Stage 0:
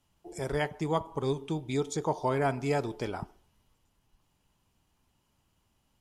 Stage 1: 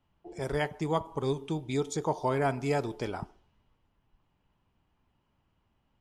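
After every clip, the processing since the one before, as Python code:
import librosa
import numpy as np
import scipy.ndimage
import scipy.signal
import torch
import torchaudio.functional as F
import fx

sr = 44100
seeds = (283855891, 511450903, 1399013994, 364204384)

y = fx.env_lowpass(x, sr, base_hz=2500.0, full_db=-29.5)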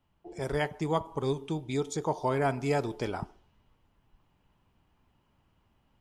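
y = fx.rider(x, sr, range_db=10, speed_s=2.0)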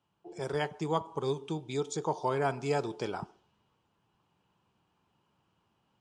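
y = fx.cabinet(x, sr, low_hz=150.0, low_slope=12, high_hz=8900.0, hz=(260.0, 620.0, 2000.0), db=(-7, -4, -7))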